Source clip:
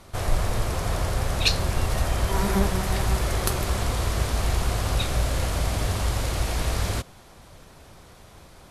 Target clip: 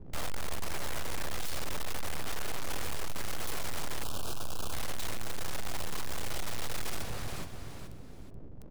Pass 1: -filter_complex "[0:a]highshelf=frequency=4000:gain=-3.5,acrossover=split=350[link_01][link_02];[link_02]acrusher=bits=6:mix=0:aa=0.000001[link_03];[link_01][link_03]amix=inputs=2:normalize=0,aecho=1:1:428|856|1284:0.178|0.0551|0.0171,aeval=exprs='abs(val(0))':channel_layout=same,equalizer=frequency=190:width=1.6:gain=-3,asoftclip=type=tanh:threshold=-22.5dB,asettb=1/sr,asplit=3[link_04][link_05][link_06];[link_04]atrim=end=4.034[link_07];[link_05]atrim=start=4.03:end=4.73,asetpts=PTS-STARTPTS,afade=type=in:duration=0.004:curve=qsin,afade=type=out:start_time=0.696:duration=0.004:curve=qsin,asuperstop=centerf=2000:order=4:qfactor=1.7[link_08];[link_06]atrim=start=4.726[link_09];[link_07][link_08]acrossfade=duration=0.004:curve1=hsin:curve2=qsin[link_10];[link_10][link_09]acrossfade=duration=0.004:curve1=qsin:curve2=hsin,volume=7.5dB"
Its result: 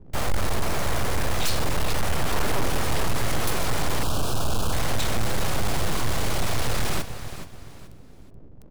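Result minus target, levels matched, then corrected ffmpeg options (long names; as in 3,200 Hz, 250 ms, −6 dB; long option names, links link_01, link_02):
soft clipping: distortion −6 dB
-filter_complex "[0:a]highshelf=frequency=4000:gain=-3.5,acrossover=split=350[link_01][link_02];[link_02]acrusher=bits=6:mix=0:aa=0.000001[link_03];[link_01][link_03]amix=inputs=2:normalize=0,aecho=1:1:428|856|1284:0.178|0.0551|0.0171,aeval=exprs='abs(val(0))':channel_layout=same,equalizer=frequency=190:width=1.6:gain=-3,asoftclip=type=tanh:threshold=-34dB,asettb=1/sr,asplit=3[link_04][link_05][link_06];[link_04]atrim=end=4.034[link_07];[link_05]atrim=start=4.03:end=4.73,asetpts=PTS-STARTPTS,afade=type=in:duration=0.004:curve=qsin,afade=type=out:start_time=0.696:duration=0.004:curve=qsin,asuperstop=centerf=2000:order=4:qfactor=1.7[link_08];[link_06]atrim=start=4.726[link_09];[link_07][link_08]acrossfade=duration=0.004:curve1=hsin:curve2=qsin[link_10];[link_10][link_09]acrossfade=duration=0.004:curve1=qsin:curve2=hsin,volume=7.5dB"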